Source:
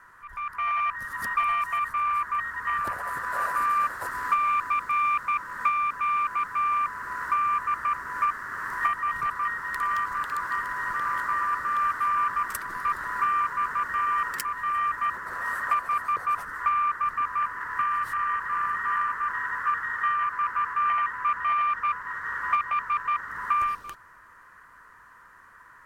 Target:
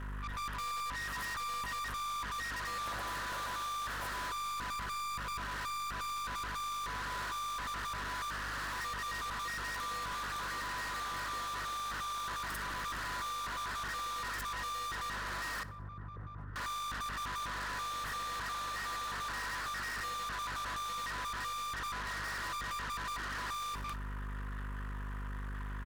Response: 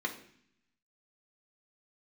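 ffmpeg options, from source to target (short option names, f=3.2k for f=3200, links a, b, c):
-filter_complex "[0:a]acontrast=63,alimiter=limit=-16dB:level=0:latency=1:release=53,aeval=exprs='val(0)+0.0158*(sin(2*PI*50*n/s)+sin(2*PI*2*50*n/s)/2+sin(2*PI*3*50*n/s)/3+sin(2*PI*4*50*n/s)/4+sin(2*PI*5*50*n/s)/5)':c=same,volume=25dB,asoftclip=hard,volume=-25dB,asettb=1/sr,asplit=3[a][b][c];[a]atrim=end=15.634[d];[b]atrim=start=15.63:end=16.56,asetpts=PTS-STARTPTS,afade=t=in:d=0.004:c=qsin,afade=t=out:st=0.926:d=0.004:c=qsin,bandpass=f=110:t=q:w=1.3:csg=0[e];[c]atrim=start=16.556[f];[d][e]acrossfade=d=0.004:c1=hsin:c2=qsin[g];[g][f]acrossfade=d=0.004:c1=qsin:c2=hsin,asoftclip=type=tanh:threshold=-38dB,asplit=2[h][i];[i]aecho=0:1:61|122|183|244:0.1|0.048|0.023|0.0111[j];[h][j]amix=inputs=2:normalize=0"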